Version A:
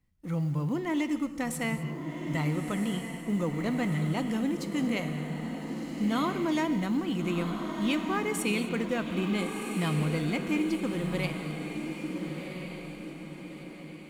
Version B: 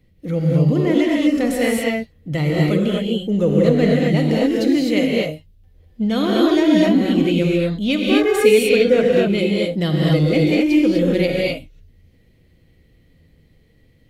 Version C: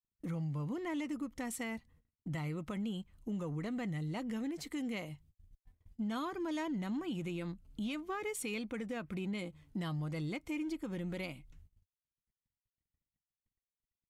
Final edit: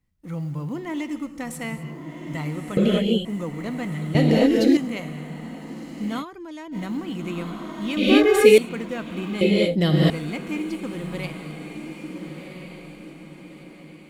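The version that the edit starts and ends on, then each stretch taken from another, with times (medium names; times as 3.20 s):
A
2.77–3.25 s: from B
4.15–4.77 s: from B
6.22–6.74 s: from C, crossfade 0.06 s
7.97–8.58 s: from B
9.41–10.10 s: from B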